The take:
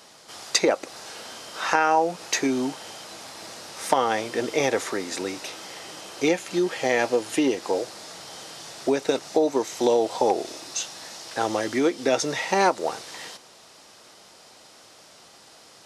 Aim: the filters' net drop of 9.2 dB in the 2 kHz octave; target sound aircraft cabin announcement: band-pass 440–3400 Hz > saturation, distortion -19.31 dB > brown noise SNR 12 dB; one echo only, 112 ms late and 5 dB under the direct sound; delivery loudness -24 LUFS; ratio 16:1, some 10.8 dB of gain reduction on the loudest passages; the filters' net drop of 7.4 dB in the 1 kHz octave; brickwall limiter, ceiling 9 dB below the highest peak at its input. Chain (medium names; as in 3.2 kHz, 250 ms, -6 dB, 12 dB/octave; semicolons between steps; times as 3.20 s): peaking EQ 1 kHz -8 dB; peaking EQ 2 kHz -8.5 dB; compression 16:1, threshold -29 dBFS; peak limiter -24.5 dBFS; band-pass 440–3400 Hz; delay 112 ms -5 dB; saturation -29.5 dBFS; brown noise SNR 12 dB; trim +17 dB